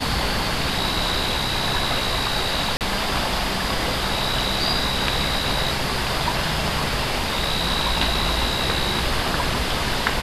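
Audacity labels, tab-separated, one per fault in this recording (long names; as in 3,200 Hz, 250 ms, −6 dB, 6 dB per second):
2.770000	2.810000	drop-out 38 ms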